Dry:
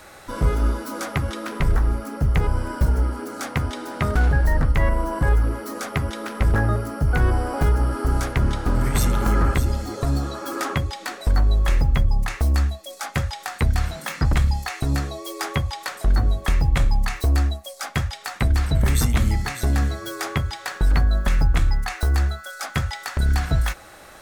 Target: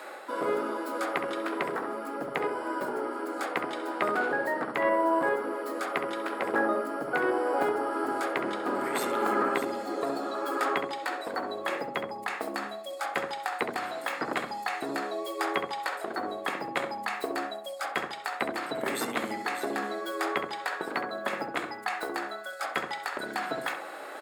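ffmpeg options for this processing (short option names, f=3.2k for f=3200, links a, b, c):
-filter_complex "[0:a]highpass=f=320:w=0.5412,highpass=f=320:w=1.3066,equalizer=f=5.9k:w=7.8:g=-12.5,areverse,acompressor=mode=upward:threshold=-33dB:ratio=2.5,areverse,highshelf=f=3.3k:g=-10.5,asplit=2[a][b];[b]adelay=67,lowpass=f=1.3k:p=1,volume=-4dB,asplit=2[c][d];[d]adelay=67,lowpass=f=1.3k:p=1,volume=0.39,asplit=2[e][f];[f]adelay=67,lowpass=f=1.3k:p=1,volume=0.39,asplit=2[g][h];[h]adelay=67,lowpass=f=1.3k:p=1,volume=0.39,asplit=2[i][j];[j]adelay=67,lowpass=f=1.3k:p=1,volume=0.39[k];[a][c][e][g][i][k]amix=inputs=6:normalize=0"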